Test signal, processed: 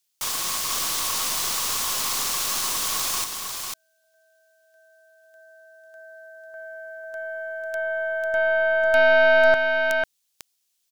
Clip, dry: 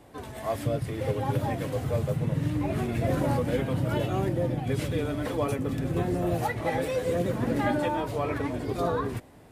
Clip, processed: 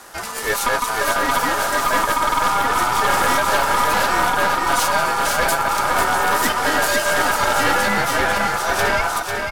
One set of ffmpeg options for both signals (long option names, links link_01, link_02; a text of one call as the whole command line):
ffmpeg -i in.wav -filter_complex "[0:a]highshelf=frequency=3200:width_type=q:width=1.5:gain=11.5,aeval=exprs='val(0)*sin(2*PI*1100*n/s)':channel_layout=same,acontrast=81,aeval=exprs='0.473*(cos(1*acos(clip(val(0)/0.473,-1,1)))-cos(1*PI/2))+0.211*(cos(5*acos(clip(val(0)/0.473,-1,1)))-cos(5*PI/2))+0.119*(cos(6*acos(clip(val(0)/0.473,-1,1)))-cos(6*PI/2))':channel_layout=same,asplit=2[link_01][link_02];[link_02]aecho=0:1:497:0.562[link_03];[link_01][link_03]amix=inputs=2:normalize=0,volume=-4.5dB" out.wav